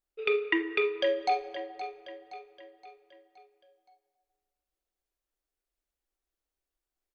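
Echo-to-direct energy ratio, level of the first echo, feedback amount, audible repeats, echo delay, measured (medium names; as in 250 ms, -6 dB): -11.5 dB, -12.5 dB, 49%, 4, 520 ms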